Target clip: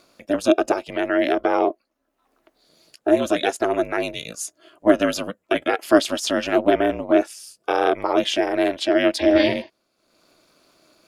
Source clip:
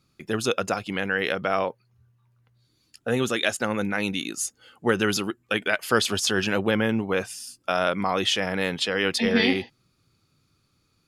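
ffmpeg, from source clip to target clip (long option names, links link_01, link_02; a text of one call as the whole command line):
ffmpeg -i in.wav -af "acompressor=mode=upward:threshold=-42dB:ratio=2.5,highpass=frequency=480:width_type=q:width=4.9,aeval=exprs='val(0)*sin(2*PI*150*n/s)':channel_layout=same,volume=1dB" out.wav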